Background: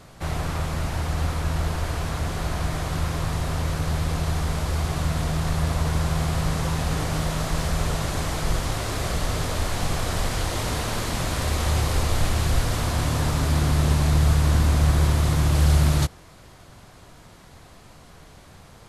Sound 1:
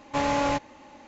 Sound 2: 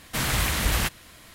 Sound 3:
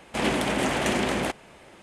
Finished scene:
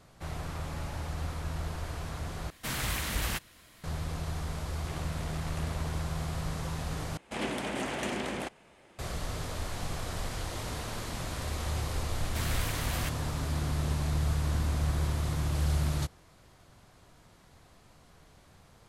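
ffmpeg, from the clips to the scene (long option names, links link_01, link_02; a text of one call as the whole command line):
ffmpeg -i bed.wav -i cue0.wav -i cue1.wav -i cue2.wav -filter_complex "[2:a]asplit=2[link_01][link_02];[3:a]asplit=2[link_03][link_04];[0:a]volume=-10.5dB[link_05];[1:a]acompressor=threshold=-29dB:ratio=6:attack=3.2:release=140:knee=1:detection=peak[link_06];[link_03]tremolo=f=74:d=0.974[link_07];[link_05]asplit=3[link_08][link_09][link_10];[link_08]atrim=end=2.504[link_11];[link_01]atrim=end=1.34,asetpts=PTS-STARTPTS,volume=-8dB[link_12];[link_09]atrim=start=3.836:end=7.174[link_13];[link_04]atrim=end=1.82,asetpts=PTS-STARTPTS,volume=-9dB[link_14];[link_10]atrim=start=8.986[link_15];[link_06]atrim=end=1.07,asetpts=PTS-STARTPTS,volume=-17.5dB,afade=type=in:duration=0.004:curve=hsin,afade=type=out:start_time=1.066:duration=0.004:curve=hsin,adelay=520[link_16];[link_07]atrim=end=1.82,asetpts=PTS-STARTPTS,volume=-17.5dB,afade=type=in:duration=0.004:curve=hsin,afade=type=out:start_time=1.816:duration=0.004:curve=hsin,adelay=4710[link_17];[link_02]atrim=end=1.34,asetpts=PTS-STARTPTS,volume=-11dB,afade=type=in:duration=0.004:curve=hsin,afade=type=out:start_time=1.336:duration=0.004:curve=hsin,adelay=12210[link_18];[link_11][link_12]acrossfade=duration=0.004:curve1=hsin:curve2=hsin[link_19];[link_19][link_13]acrossfade=duration=0.004:curve1=hsin:curve2=hsin[link_20];[link_20][link_14]acrossfade=duration=0.004:curve1=hsin:curve2=hsin[link_21];[link_21][link_15]acrossfade=duration=0.004:curve1=hsin:curve2=hsin[link_22];[link_22][link_16][link_17][link_18]amix=inputs=4:normalize=0" out.wav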